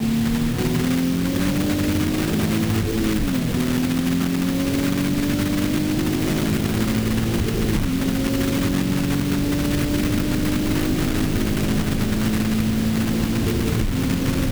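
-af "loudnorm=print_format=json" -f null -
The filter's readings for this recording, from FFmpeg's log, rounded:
"input_i" : "-21.4",
"input_tp" : "-8.0",
"input_lra" : "0.3",
"input_thresh" : "-31.4",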